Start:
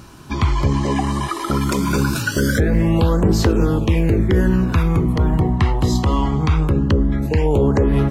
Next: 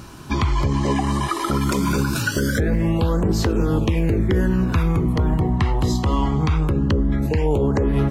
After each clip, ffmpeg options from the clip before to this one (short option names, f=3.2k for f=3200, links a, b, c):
-af "alimiter=limit=-12.5dB:level=0:latency=1:release=282,volume=2dB"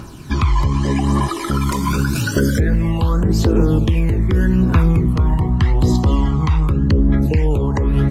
-af "aphaser=in_gain=1:out_gain=1:delay=1.1:decay=0.5:speed=0.84:type=triangular"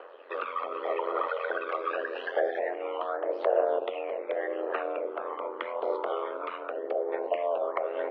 -af "highpass=f=370:t=q:w=0.5412,highpass=f=370:t=q:w=1.307,lowpass=f=3k:t=q:w=0.5176,lowpass=f=3k:t=q:w=0.7071,lowpass=f=3k:t=q:w=1.932,afreqshift=180,aeval=exprs='val(0)*sin(2*PI*43*n/s)':c=same,tiltshelf=f=780:g=7,volume=-2dB"